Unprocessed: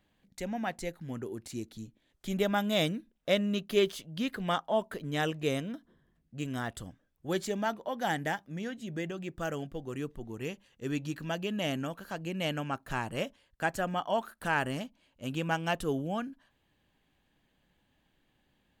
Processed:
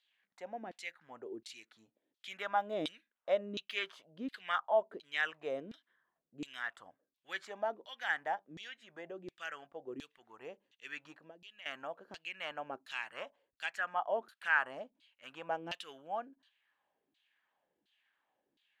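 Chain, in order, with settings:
low-shelf EQ 490 Hz −11.5 dB
0:11.13–0:11.66: downward compressor 5 to 1, threshold −50 dBFS, peak gain reduction 16 dB
auto-filter band-pass saw down 1.4 Hz 280–4,200 Hz
level +5 dB

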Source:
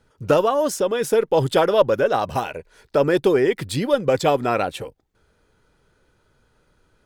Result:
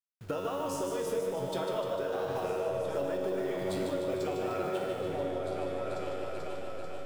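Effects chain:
hold until the input has moved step −34.5 dBFS
tuned comb filter 93 Hz, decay 1.5 s, harmonics all, mix 90%
echo whose low-pass opens from repeat to repeat 439 ms, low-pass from 200 Hz, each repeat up 2 octaves, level −3 dB
downward compressor, threshold −34 dBFS, peak gain reduction 9.5 dB
feedback echo with a swinging delay time 150 ms, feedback 62%, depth 83 cents, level −6 dB
level +3 dB

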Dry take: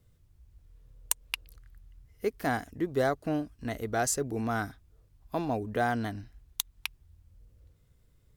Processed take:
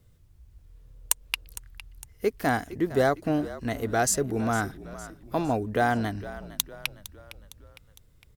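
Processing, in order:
echo with shifted repeats 458 ms, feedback 49%, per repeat −49 Hz, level −15.5 dB
level +4.5 dB

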